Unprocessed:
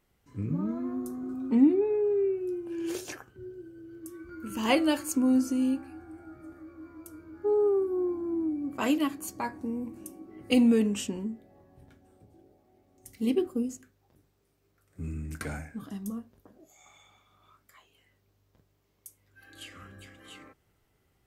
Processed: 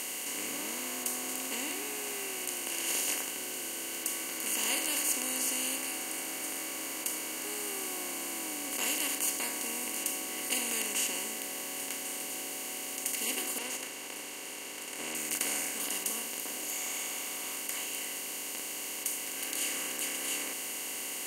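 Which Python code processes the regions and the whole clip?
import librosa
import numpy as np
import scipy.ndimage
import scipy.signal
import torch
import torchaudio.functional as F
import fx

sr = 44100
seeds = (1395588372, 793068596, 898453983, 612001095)

y = fx.chain(x, sr, fx.lower_of_two(delay_ms=2.2),
    fx.lowpass(hz=2300.0, slope=12), at=(13.58, 15.15))
y = fx.bin_compress(y, sr, power=0.2)
y = np.diff(y, prepend=0.0)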